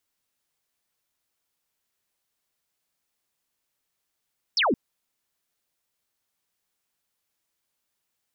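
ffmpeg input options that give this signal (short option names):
-f lavfi -i "aevalsrc='0.112*clip(t/0.002,0,1)*clip((0.17-t)/0.002,0,1)*sin(2*PI*5800*0.17/log(200/5800)*(exp(log(200/5800)*t/0.17)-1))':d=0.17:s=44100"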